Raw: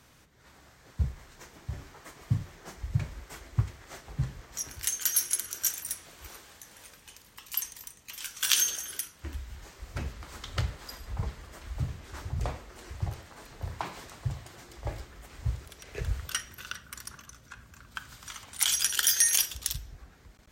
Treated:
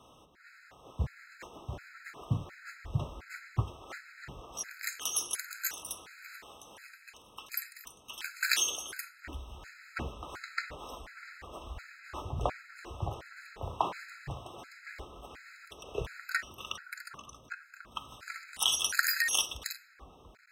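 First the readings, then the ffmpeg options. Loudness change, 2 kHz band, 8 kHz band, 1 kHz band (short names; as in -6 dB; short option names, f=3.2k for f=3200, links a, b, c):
-4.5 dB, +4.0 dB, -7.0 dB, +4.5 dB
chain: -af "bass=f=250:g=-11,treble=f=4k:g=-12,acontrast=78,afftfilt=real='re*gt(sin(2*PI*1.4*pts/sr)*(1-2*mod(floor(b*sr/1024/1300),2)),0)':imag='im*gt(sin(2*PI*1.4*pts/sr)*(1-2*mod(floor(b*sr/1024/1300),2)),0)':win_size=1024:overlap=0.75"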